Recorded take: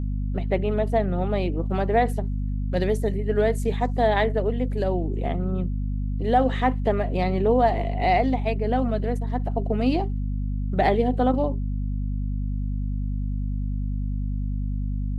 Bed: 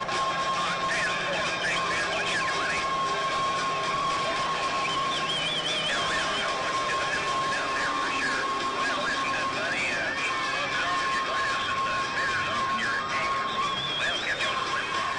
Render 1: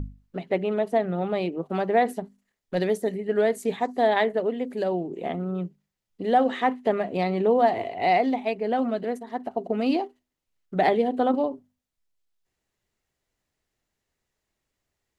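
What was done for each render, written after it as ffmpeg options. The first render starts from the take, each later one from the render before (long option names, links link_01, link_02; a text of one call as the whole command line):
ffmpeg -i in.wav -af "bandreject=frequency=50:width_type=h:width=6,bandreject=frequency=100:width_type=h:width=6,bandreject=frequency=150:width_type=h:width=6,bandreject=frequency=200:width_type=h:width=6,bandreject=frequency=250:width_type=h:width=6" out.wav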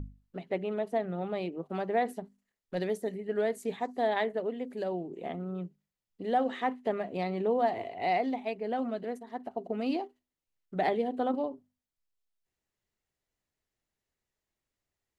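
ffmpeg -i in.wav -af "volume=-7.5dB" out.wav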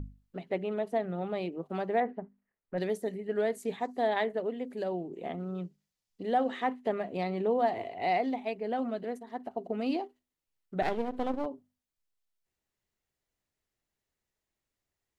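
ffmpeg -i in.wav -filter_complex "[0:a]asettb=1/sr,asplit=3[link_01][link_02][link_03];[link_01]atrim=end=2.004[link_04];[link_02]atrim=start=2:end=2.78,asetpts=PTS-STARTPTS,afade=type=in:duration=0.004:curve=qsin,afade=type=out:start_time=0.776:duration=0.004:curve=qsin,lowpass=frequency=2100:width=0.5412,lowpass=frequency=2100:width=1.3066[link_05];[link_03]atrim=start=2.776[link_06];[link_04][link_05]acrossfade=duration=0.004:curve1=hsin:curve2=qsin[link_07];[link_07][link_06]acrossfade=duration=0.004:curve1=qsin:curve2=hsin,asettb=1/sr,asplit=3[link_08][link_09][link_10];[link_08]atrim=end=5.384[link_11];[link_09]atrim=start=5.38:end=6.23,asetpts=PTS-STARTPTS,afade=type=in:duration=0.004:curve=qsin,afade=type=out:start_time=0.846:duration=0.004:curve=qsin,equalizer=frequency=5400:width=0.84:gain=7[link_12];[link_10]atrim=start=6.226[link_13];[link_11][link_12]acrossfade=duration=0.004:curve1=hsin:curve2=qsin[link_14];[link_14][link_13]acrossfade=duration=0.004:curve1=qsin:curve2=hsin,asettb=1/sr,asplit=3[link_15][link_16][link_17];[link_15]atrim=end=10.824[link_18];[link_16]atrim=start=10.82:end=11.46,asetpts=PTS-STARTPTS,afade=type=in:duration=0.004:curve=qsin,afade=type=out:start_time=0.636:duration=0.004:curve=qsin,aeval=exprs='if(lt(val(0),0),0.251*val(0),val(0))':channel_layout=same[link_19];[link_17]atrim=start=11.456[link_20];[link_18][link_19]acrossfade=duration=0.004:curve1=hsin:curve2=qsin[link_21];[link_21][link_20]acrossfade=duration=0.004:curve1=qsin:curve2=hsin" out.wav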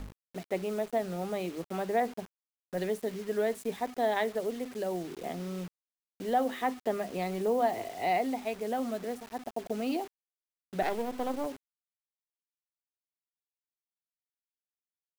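ffmpeg -i in.wav -filter_complex "[0:a]acrossover=split=250[link_01][link_02];[link_01]asoftclip=type=hard:threshold=-38.5dB[link_03];[link_03][link_02]amix=inputs=2:normalize=0,acrusher=bits=7:mix=0:aa=0.000001" out.wav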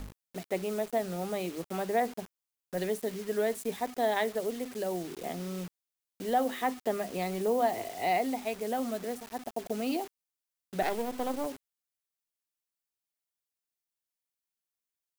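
ffmpeg -i in.wav -af "highshelf=frequency=5100:gain=6.5" out.wav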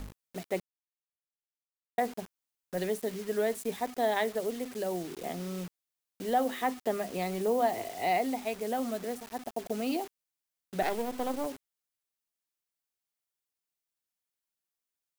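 ffmpeg -i in.wav -filter_complex "[0:a]asplit=3[link_01][link_02][link_03];[link_01]atrim=end=0.6,asetpts=PTS-STARTPTS,afade=type=out:start_time=0.596:duration=0.004:curve=hsin[link_04];[link_02]atrim=start=0.6:end=1.98,asetpts=PTS-STARTPTS,volume=0[link_05];[link_03]atrim=start=1.98,asetpts=PTS-STARTPTS,afade=type=in:duration=0.004:curve=hsin[link_06];[link_04][link_05][link_06]concat=n=3:v=0:a=1" out.wav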